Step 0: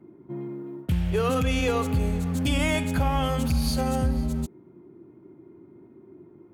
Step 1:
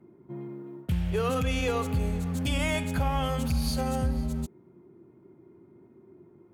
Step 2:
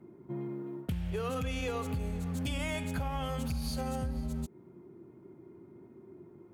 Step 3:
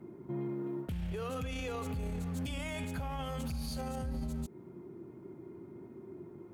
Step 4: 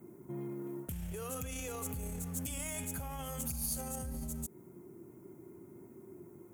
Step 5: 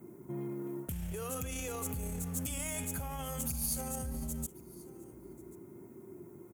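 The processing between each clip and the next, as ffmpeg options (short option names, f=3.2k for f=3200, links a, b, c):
-af "equalizer=f=300:t=o:w=0.27:g=-6.5,volume=-3dB"
-af "acompressor=threshold=-34dB:ratio=4,volume=1.5dB"
-af "alimiter=level_in=10.5dB:limit=-24dB:level=0:latency=1:release=24,volume=-10.5dB,volume=4dB"
-af "aexciter=amount=8.2:drive=4:freq=6.1k,volume=-4dB"
-af "aecho=1:1:1087:0.075,volume=2dB"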